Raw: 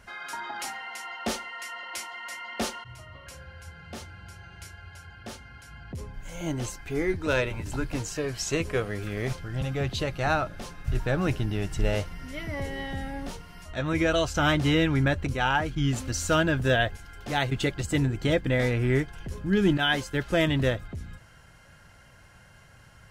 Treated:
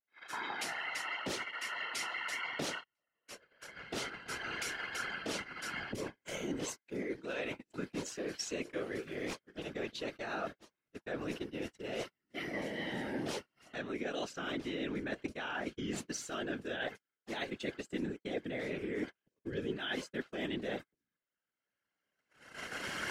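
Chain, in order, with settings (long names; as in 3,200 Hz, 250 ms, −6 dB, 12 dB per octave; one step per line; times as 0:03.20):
camcorder AGC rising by 11 dB per second
high-pass filter 250 Hz 24 dB per octave
noise gate −34 dBFS, range −45 dB
low-pass filter 3,300 Hz 6 dB per octave
parametric band 900 Hz −8.5 dB 1.6 octaves
reversed playback
downward compressor 6 to 1, threshold −41 dBFS, peak gain reduction 17 dB
reversed playback
random phases in short frames
pitch vibrato 0.88 Hz 24 cents
level +4.5 dB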